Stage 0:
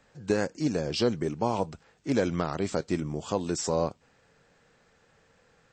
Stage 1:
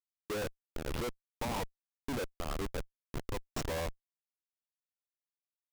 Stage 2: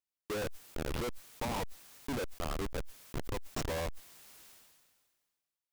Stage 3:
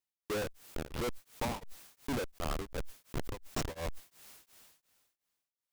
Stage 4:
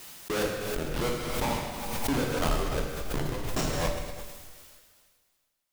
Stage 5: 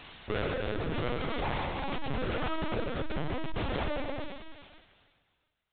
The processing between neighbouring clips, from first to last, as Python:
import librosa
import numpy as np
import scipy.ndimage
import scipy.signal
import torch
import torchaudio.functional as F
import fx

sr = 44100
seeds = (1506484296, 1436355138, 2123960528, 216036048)

y1 = fx.spec_gate(x, sr, threshold_db=-15, keep='strong')
y1 = fx.filter_lfo_bandpass(y1, sr, shape='sine', hz=1.8, low_hz=880.0, high_hz=3900.0, q=0.84)
y1 = fx.schmitt(y1, sr, flips_db=-37.0)
y1 = y1 * 10.0 ** (4.0 / 20.0)
y2 = fx.sustainer(y1, sr, db_per_s=35.0)
y3 = y2 * np.abs(np.cos(np.pi * 2.8 * np.arange(len(y2)) / sr))
y3 = y3 * 10.0 ** (2.0 / 20.0)
y4 = fx.rev_plate(y3, sr, seeds[0], rt60_s=1.5, hf_ratio=1.0, predelay_ms=0, drr_db=-2.0)
y4 = fx.pre_swell(y4, sr, db_per_s=33.0)
y4 = y4 * 10.0 ** (3.5 / 20.0)
y5 = np.clip(10.0 ** (33.0 / 20.0) * y4, -1.0, 1.0) / 10.0 ** (33.0 / 20.0)
y5 = fx.lpc_vocoder(y5, sr, seeds[1], excitation='pitch_kept', order=10)
y5 = y5 * 10.0 ** (3.5 / 20.0)